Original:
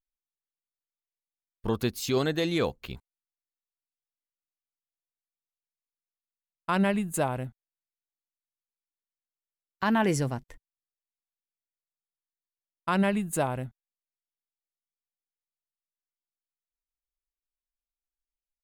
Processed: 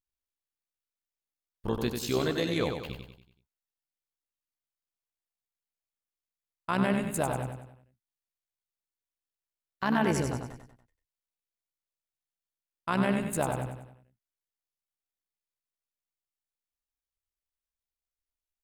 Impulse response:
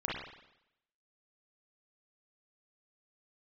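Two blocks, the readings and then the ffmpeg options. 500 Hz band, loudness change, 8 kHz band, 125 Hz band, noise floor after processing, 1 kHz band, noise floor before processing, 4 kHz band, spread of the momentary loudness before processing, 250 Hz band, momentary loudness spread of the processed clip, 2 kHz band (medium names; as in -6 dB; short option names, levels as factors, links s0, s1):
-1.5 dB, -2.0 dB, -1.5 dB, -1.5 dB, under -85 dBFS, -1.5 dB, under -85 dBFS, -1.5 dB, 16 LU, -2.0 dB, 14 LU, -1.5 dB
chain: -af "tremolo=f=66:d=0.621,aecho=1:1:95|190|285|380|475:0.501|0.226|0.101|0.0457|0.0206"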